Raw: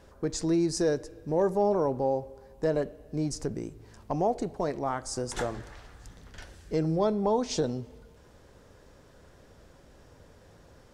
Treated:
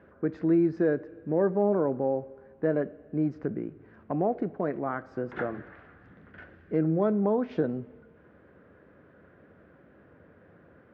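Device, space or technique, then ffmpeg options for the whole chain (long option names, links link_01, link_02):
bass cabinet: -af "highpass=frequency=85:width=0.5412,highpass=frequency=85:width=1.3066,equalizer=frequency=110:width_type=q:width=4:gain=-6,equalizer=frequency=200:width_type=q:width=4:gain=4,equalizer=frequency=310:width_type=q:width=4:gain=4,equalizer=frequency=890:width_type=q:width=4:gain=-7,equalizer=frequency=1500:width_type=q:width=4:gain=5,lowpass=frequency=2200:width=0.5412,lowpass=frequency=2200:width=1.3066"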